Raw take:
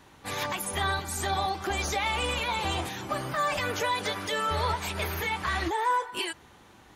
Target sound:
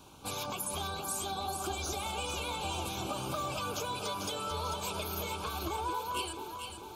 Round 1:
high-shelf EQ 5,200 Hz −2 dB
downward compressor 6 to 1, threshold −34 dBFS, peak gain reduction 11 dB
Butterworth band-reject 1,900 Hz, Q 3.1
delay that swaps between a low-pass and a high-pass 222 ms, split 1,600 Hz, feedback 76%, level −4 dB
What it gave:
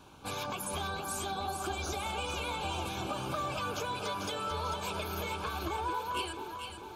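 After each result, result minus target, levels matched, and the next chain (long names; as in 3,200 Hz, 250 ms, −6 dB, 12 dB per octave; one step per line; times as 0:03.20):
8,000 Hz band −3.5 dB; 2,000 Hz band +3.0 dB
high-shelf EQ 5,200 Hz +6 dB
downward compressor 6 to 1, threshold −34 dBFS, peak gain reduction 11 dB
Butterworth band-reject 1,900 Hz, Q 3.1
delay that swaps between a low-pass and a high-pass 222 ms, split 1,600 Hz, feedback 76%, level −4 dB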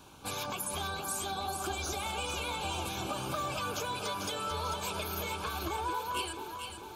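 2,000 Hz band +2.5 dB
high-shelf EQ 5,200 Hz +6 dB
downward compressor 6 to 1, threshold −34 dBFS, peak gain reduction 11 dB
Butterworth band-reject 1,900 Hz, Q 3.1
parametric band 1,800 Hz −11.5 dB 0.38 octaves
delay that swaps between a low-pass and a high-pass 222 ms, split 1,600 Hz, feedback 76%, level −4 dB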